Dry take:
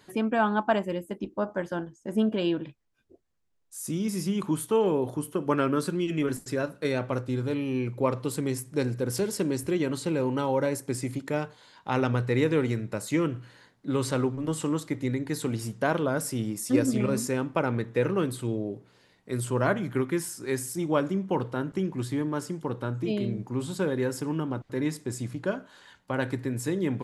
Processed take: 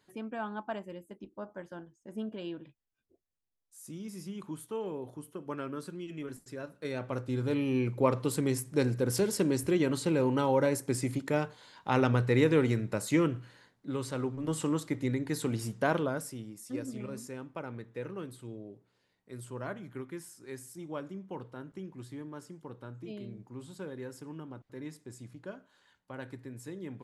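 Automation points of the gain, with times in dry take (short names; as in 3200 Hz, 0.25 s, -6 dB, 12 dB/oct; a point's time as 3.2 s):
6.55 s -13 dB
7.58 s -0.5 dB
13.2 s -0.5 dB
14.1 s -9 dB
14.55 s -2.5 dB
15.97 s -2.5 dB
16.46 s -14 dB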